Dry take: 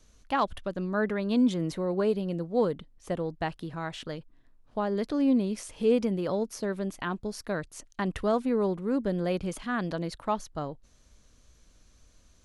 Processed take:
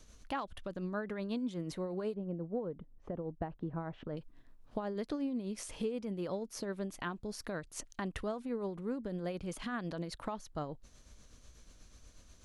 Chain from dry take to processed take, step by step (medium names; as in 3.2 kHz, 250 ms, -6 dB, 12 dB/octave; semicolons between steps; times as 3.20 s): 2.14–4.17 s: Bessel low-pass 860 Hz, order 2; compression 6:1, threshold -37 dBFS, peak gain reduction 16.5 dB; tremolo 8.2 Hz, depth 43%; trim +3.5 dB